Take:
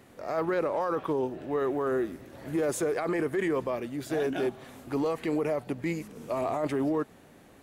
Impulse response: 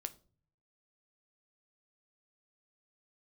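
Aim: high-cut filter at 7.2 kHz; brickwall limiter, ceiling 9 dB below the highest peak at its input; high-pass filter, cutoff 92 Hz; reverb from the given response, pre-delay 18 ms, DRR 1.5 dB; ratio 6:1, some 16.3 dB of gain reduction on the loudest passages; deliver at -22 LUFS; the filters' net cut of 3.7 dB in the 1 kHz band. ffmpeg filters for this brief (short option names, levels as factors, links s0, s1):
-filter_complex "[0:a]highpass=92,lowpass=7200,equalizer=f=1000:t=o:g=-5,acompressor=threshold=0.00631:ratio=6,alimiter=level_in=7.08:limit=0.0631:level=0:latency=1,volume=0.141,asplit=2[s0][s1];[1:a]atrim=start_sample=2205,adelay=18[s2];[s1][s2]afir=irnorm=-1:irlink=0,volume=1.12[s3];[s0][s3]amix=inputs=2:normalize=0,volume=17.8"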